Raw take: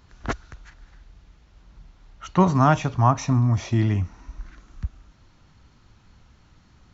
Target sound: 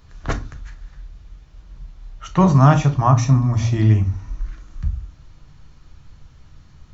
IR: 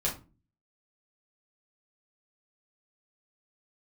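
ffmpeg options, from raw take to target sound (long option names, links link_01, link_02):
-filter_complex "[0:a]asplit=2[link_01][link_02];[1:a]atrim=start_sample=2205,lowshelf=frequency=170:gain=9.5,highshelf=frequency=4600:gain=9[link_03];[link_02][link_03]afir=irnorm=-1:irlink=0,volume=-10.5dB[link_04];[link_01][link_04]amix=inputs=2:normalize=0,volume=-1dB"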